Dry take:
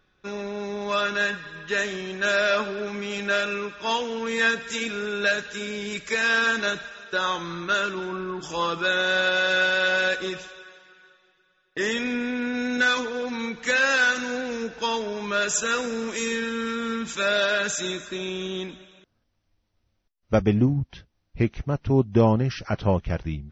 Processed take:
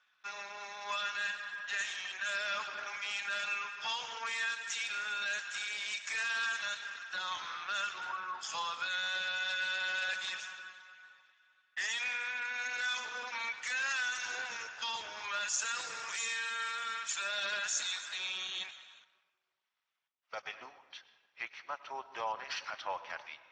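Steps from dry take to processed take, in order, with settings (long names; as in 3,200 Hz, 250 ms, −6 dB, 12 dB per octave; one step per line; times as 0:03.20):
high-pass filter 900 Hz 24 dB per octave
dynamic equaliser 1,400 Hz, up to −5 dB, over −34 dBFS, Q 1
brickwall limiter −24.5 dBFS, peak gain reduction 11 dB
on a send at −13 dB: convolution reverb RT60 1.5 s, pre-delay 95 ms
on the sum: level −1.5 dB
Speex 15 kbit/s 32,000 Hz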